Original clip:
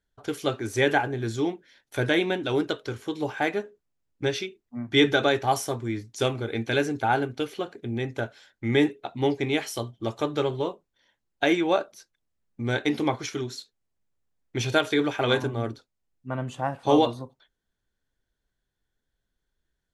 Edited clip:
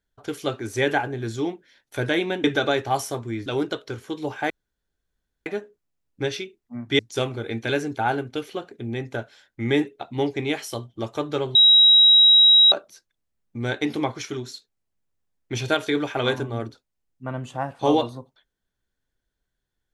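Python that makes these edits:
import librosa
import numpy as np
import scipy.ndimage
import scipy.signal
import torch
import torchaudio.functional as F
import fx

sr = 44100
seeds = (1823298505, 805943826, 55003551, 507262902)

y = fx.edit(x, sr, fx.insert_room_tone(at_s=3.48, length_s=0.96),
    fx.move(start_s=5.01, length_s=1.02, to_s=2.44),
    fx.bleep(start_s=10.59, length_s=1.17, hz=3840.0, db=-10.0), tone=tone)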